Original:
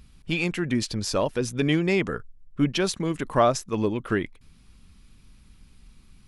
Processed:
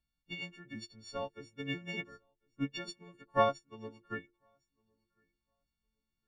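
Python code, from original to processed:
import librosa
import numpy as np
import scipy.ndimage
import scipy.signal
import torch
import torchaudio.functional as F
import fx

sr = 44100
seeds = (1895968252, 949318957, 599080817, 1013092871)

p1 = fx.freq_snap(x, sr, grid_st=4)
p2 = fx.air_absorb(p1, sr, metres=140.0)
p3 = fx.hum_notches(p2, sr, base_hz=50, count=9)
p4 = p3 + fx.echo_feedback(p3, sr, ms=1059, feedback_pct=17, wet_db=-19, dry=0)
p5 = fx.upward_expand(p4, sr, threshold_db=-33.0, expansion=2.5)
y = p5 * 10.0 ** (-6.5 / 20.0)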